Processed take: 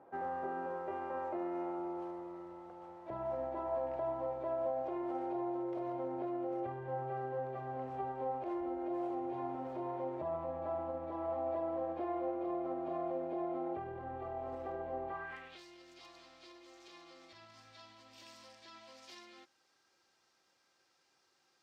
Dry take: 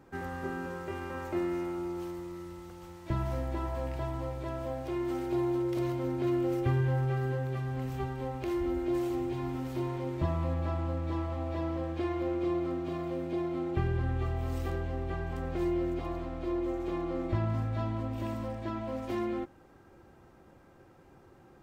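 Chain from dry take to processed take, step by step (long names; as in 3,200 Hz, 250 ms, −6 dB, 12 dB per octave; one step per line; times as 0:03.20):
brickwall limiter −27.5 dBFS, peak gain reduction 9.5 dB
band-pass filter sweep 690 Hz → 5,000 Hz, 0:15.04–0:15.64
level +6 dB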